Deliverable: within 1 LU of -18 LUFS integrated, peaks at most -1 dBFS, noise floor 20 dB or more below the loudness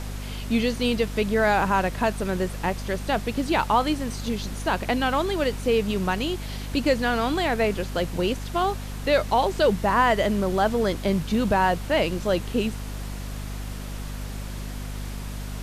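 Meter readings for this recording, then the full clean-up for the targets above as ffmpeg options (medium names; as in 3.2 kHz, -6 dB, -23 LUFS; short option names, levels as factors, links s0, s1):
hum 50 Hz; highest harmonic 250 Hz; hum level -31 dBFS; noise floor -34 dBFS; noise floor target -45 dBFS; loudness -24.5 LUFS; peak level -8.5 dBFS; loudness target -18.0 LUFS
-> -af "bandreject=f=50:t=h:w=4,bandreject=f=100:t=h:w=4,bandreject=f=150:t=h:w=4,bandreject=f=200:t=h:w=4,bandreject=f=250:t=h:w=4"
-af "afftdn=nr=11:nf=-34"
-af "volume=2.11"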